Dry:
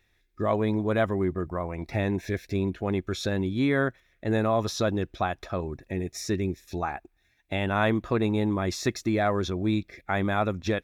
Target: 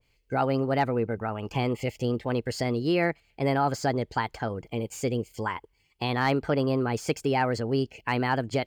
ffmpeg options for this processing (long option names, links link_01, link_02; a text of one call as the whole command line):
ffmpeg -i in.wav -filter_complex "[0:a]acrossover=split=650|5200[link_01][link_02][link_03];[link_03]aeval=exprs='0.01*(abs(mod(val(0)/0.01+3,4)-2)-1)':channel_layout=same[link_04];[link_01][link_02][link_04]amix=inputs=3:normalize=0,asetrate=55125,aresample=44100,asoftclip=type=hard:threshold=-12.5dB,adynamicequalizer=threshold=0.0158:dfrequency=1600:dqfactor=0.7:tfrequency=1600:tqfactor=0.7:attack=5:release=100:ratio=0.375:range=2:mode=cutabove:tftype=highshelf" out.wav